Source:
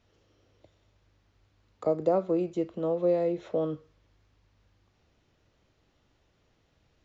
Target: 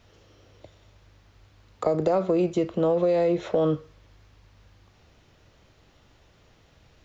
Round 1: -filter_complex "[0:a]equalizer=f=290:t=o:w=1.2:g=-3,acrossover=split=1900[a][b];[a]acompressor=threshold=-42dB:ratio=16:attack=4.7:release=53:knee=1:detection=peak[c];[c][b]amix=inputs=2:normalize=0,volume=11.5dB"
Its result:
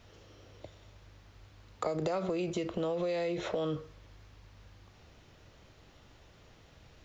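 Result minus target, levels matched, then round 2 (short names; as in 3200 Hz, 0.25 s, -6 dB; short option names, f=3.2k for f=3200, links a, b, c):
compressor: peak gain reduction +11 dB
-filter_complex "[0:a]equalizer=f=290:t=o:w=1.2:g=-3,acrossover=split=1900[a][b];[a]acompressor=threshold=-30dB:ratio=16:attack=4.7:release=53:knee=1:detection=peak[c];[c][b]amix=inputs=2:normalize=0,volume=11.5dB"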